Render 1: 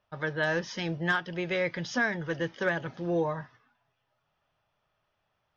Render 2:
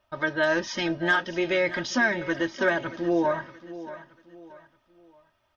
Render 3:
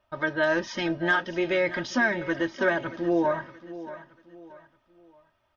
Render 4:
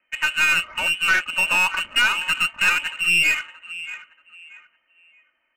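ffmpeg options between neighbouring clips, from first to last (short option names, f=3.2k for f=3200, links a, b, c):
-filter_complex "[0:a]aecho=1:1:3.2:0.66,asplit=2[a][b];[b]alimiter=limit=-22dB:level=0:latency=1:release=30,volume=-3dB[c];[a][c]amix=inputs=2:normalize=0,aecho=1:1:629|1258|1887:0.178|0.064|0.023"
-af "highshelf=f=4.1k:g=-7"
-af "lowpass=f=2.6k:t=q:w=0.5098,lowpass=f=2.6k:t=q:w=0.6013,lowpass=f=2.6k:t=q:w=0.9,lowpass=f=2.6k:t=q:w=2.563,afreqshift=-3100,adynamicsmooth=sensitivity=7.5:basefreq=2.3k,aeval=exprs='(tanh(7.08*val(0)+0.3)-tanh(0.3))/7.08':c=same,volume=7dB"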